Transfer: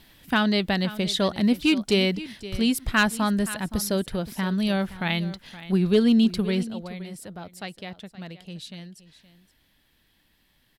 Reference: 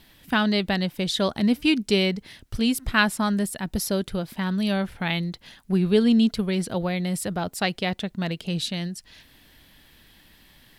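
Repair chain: clip repair -11 dBFS; inverse comb 520 ms -16 dB; gain correction +11.5 dB, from 6.63 s

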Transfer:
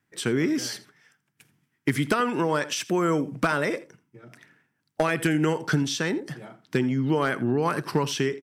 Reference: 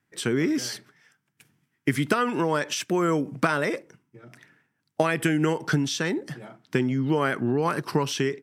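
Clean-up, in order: clip repair -13 dBFS; inverse comb 83 ms -18.5 dB

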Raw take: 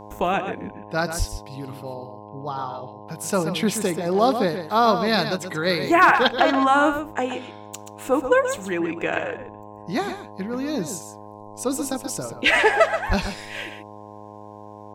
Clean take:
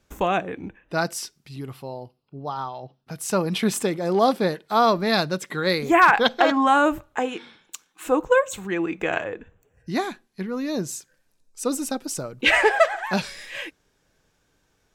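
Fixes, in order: de-hum 104.4 Hz, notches 10; de-plosive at 1.18/13.08 s; inverse comb 129 ms -9 dB

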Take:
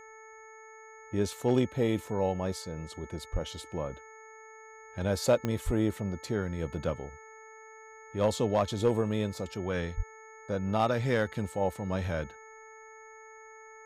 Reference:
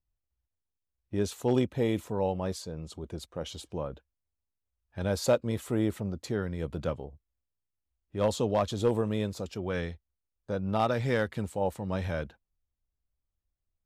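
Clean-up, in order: de-click; de-hum 439.9 Hz, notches 5; band-stop 6.6 kHz, Q 30; de-plosive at 3.32/5.65/9.96 s

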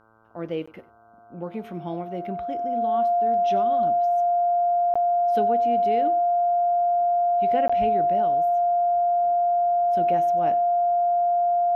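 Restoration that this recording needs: de-hum 111 Hz, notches 14; band-stop 700 Hz, Q 30; interpolate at 0.66/4.94/7.68 s, 15 ms; inverse comb 94 ms -20.5 dB

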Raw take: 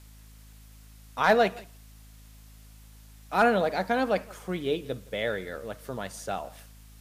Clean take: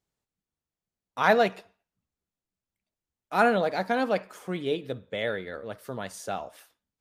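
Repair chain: clip repair -11.5 dBFS; de-hum 53.2 Hz, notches 5; expander -43 dBFS, range -21 dB; inverse comb 167 ms -23 dB

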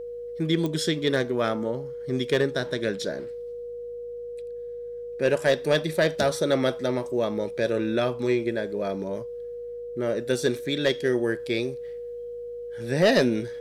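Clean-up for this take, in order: clip repair -12.5 dBFS; de-click; de-hum 54.1 Hz, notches 4; band-stop 480 Hz, Q 30

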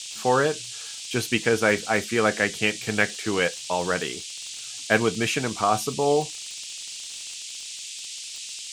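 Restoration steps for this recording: de-click; noise print and reduce 30 dB

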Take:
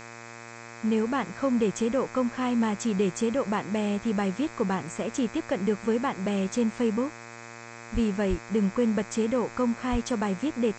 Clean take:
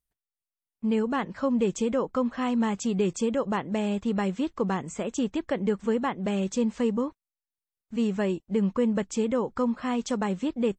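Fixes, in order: de-hum 116.5 Hz, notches 22; 7.93–8.05 s: high-pass 140 Hz 24 dB/octave; 8.29–8.41 s: high-pass 140 Hz 24 dB/octave; 9.91–10.03 s: high-pass 140 Hz 24 dB/octave; noise reduction 30 dB, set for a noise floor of -44 dBFS

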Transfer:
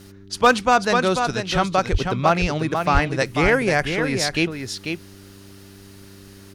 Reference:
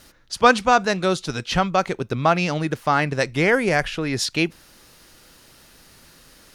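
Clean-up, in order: clip repair -7 dBFS; de-hum 98.1 Hz, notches 4; 1.91–2.03 s: high-pass 140 Hz 24 dB/octave; 2.93–3.05 s: high-pass 140 Hz 24 dB/octave; inverse comb 492 ms -6.5 dB

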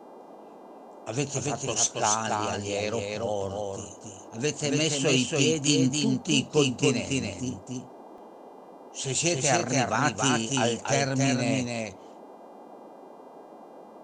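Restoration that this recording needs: de-hum 401.4 Hz, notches 34; interpolate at 8.18 s, 2.6 ms; noise print and reduce 25 dB; inverse comb 281 ms -3 dB

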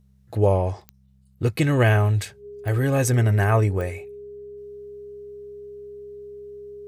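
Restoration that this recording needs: de-click; de-hum 65.6 Hz, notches 3; band-stop 410 Hz, Q 30

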